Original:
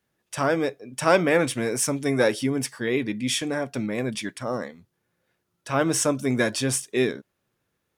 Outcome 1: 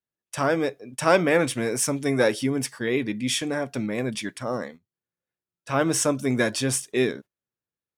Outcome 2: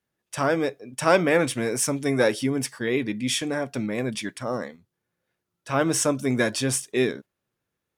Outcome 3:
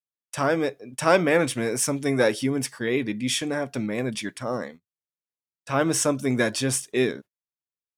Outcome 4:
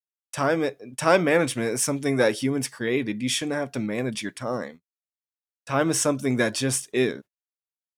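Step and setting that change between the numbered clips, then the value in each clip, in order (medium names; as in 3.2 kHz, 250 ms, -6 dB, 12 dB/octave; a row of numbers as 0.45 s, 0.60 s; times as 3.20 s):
gate, range: -20 dB, -6 dB, -35 dB, -56 dB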